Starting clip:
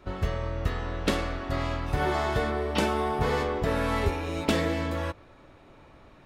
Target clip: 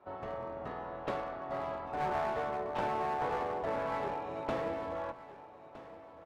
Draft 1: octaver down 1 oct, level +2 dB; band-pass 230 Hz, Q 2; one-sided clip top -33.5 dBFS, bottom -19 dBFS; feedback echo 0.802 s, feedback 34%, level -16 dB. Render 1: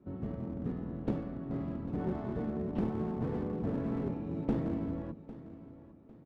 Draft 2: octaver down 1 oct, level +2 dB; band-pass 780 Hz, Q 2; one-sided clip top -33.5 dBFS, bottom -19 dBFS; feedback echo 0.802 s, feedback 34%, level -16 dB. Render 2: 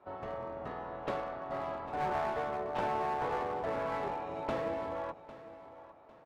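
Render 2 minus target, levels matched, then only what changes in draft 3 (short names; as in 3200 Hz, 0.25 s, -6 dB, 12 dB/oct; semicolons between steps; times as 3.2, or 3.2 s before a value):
echo 0.462 s early
change: feedback echo 1.264 s, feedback 34%, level -16 dB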